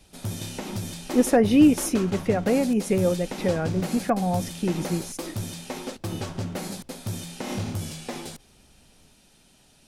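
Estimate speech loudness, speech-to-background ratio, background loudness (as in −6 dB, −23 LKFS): −23.5 LKFS, 10.0 dB, −33.5 LKFS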